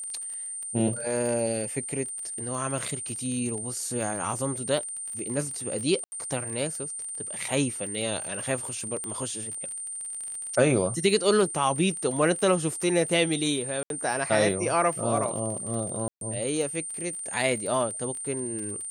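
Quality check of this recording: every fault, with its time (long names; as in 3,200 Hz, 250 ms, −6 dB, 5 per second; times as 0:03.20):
surface crackle 34 per second −33 dBFS
whistle 8,900 Hz −33 dBFS
0:06.04–0:06.12: drop-out 80 ms
0:09.04: click −21 dBFS
0:13.83–0:13.90: drop-out 72 ms
0:16.08–0:16.21: drop-out 132 ms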